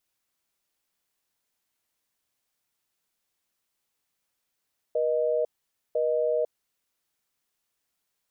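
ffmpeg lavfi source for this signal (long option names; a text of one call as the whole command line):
ffmpeg -f lavfi -i "aevalsrc='0.0562*(sin(2*PI*480*t)+sin(2*PI*620*t))*clip(min(mod(t,1),0.5-mod(t,1))/0.005,0,1)':duration=1.74:sample_rate=44100" out.wav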